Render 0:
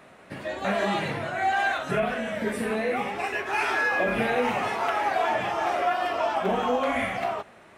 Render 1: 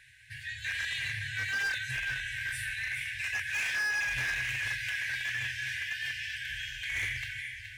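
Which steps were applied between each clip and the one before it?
FFT band-reject 130–1500 Hz; echo with dull and thin repeats by turns 0.211 s, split 1100 Hz, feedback 71%, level -5.5 dB; overloaded stage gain 28.5 dB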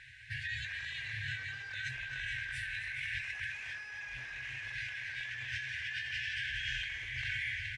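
negative-ratio compressor -40 dBFS, ratio -1; air absorption 96 m; feedback echo 0.264 s, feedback 60%, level -11 dB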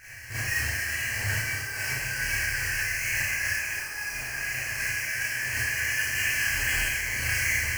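half-waves squared off; Butterworth band-stop 3600 Hz, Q 2.6; Schroeder reverb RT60 0.73 s, combs from 27 ms, DRR -9.5 dB; gain -1.5 dB

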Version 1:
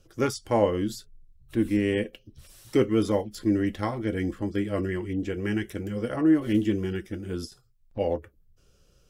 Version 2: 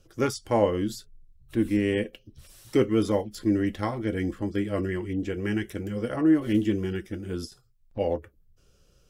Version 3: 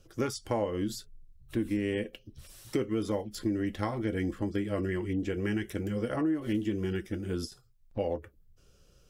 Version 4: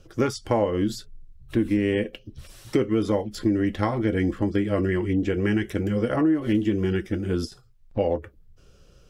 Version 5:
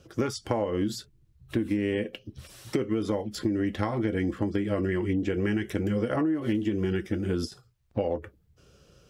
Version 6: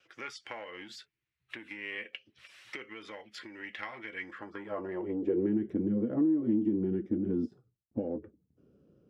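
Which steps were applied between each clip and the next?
nothing audible
compressor 5:1, threshold -27 dBFS, peak gain reduction 10.5 dB
high shelf 6500 Hz -10 dB; gain +8 dB
HPF 73 Hz; compressor, threshold -23 dBFS, peak gain reduction 7 dB; short-mantissa float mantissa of 8-bit
gate with hold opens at -56 dBFS; in parallel at -5 dB: soft clip -27 dBFS, distortion -10 dB; on the sum: band-pass sweep 2200 Hz -> 260 Hz, 4.19–5.57

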